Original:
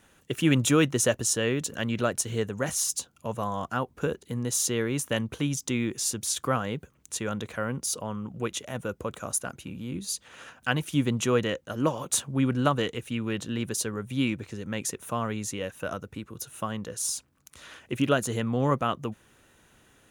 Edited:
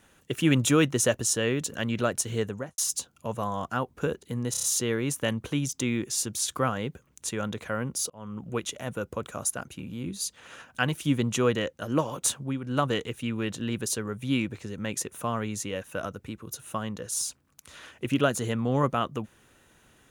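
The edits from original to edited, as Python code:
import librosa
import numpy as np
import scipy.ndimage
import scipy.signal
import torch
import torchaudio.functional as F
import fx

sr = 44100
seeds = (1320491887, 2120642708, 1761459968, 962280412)

y = fx.studio_fade_out(x, sr, start_s=2.48, length_s=0.3)
y = fx.edit(y, sr, fx.stutter(start_s=4.51, slice_s=0.03, count=5),
    fx.fade_in_span(start_s=7.98, length_s=0.3),
    fx.fade_down_up(start_s=12.13, length_s=0.71, db=-11.5, fade_s=0.35, curve='qsin'), tone=tone)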